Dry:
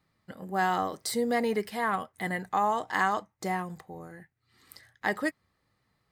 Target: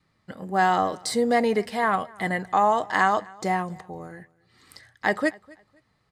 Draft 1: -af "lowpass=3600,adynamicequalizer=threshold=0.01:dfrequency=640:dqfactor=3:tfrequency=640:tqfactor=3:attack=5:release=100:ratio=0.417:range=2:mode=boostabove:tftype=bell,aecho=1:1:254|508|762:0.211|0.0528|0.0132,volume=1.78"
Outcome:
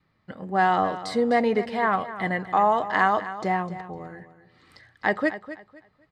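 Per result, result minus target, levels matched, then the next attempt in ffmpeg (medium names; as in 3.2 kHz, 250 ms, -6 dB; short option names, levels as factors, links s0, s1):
8 kHz band -12.5 dB; echo-to-direct +11 dB
-af "lowpass=9000,adynamicequalizer=threshold=0.01:dfrequency=640:dqfactor=3:tfrequency=640:tqfactor=3:attack=5:release=100:ratio=0.417:range=2:mode=boostabove:tftype=bell,aecho=1:1:254|508|762:0.211|0.0528|0.0132,volume=1.78"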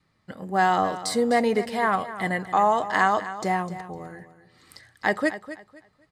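echo-to-direct +11 dB
-af "lowpass=9000,adynamicequalizer=threshold=0.01:dfrequency=640:dqfactor=3:tfrequency=640:tqfactor=3:attack=5:release=100:ratio=0.417:range=2:mode=boostabove:tftype=bell,aecho=1:1:254|508:0.0596|0.0149,volume=1.78"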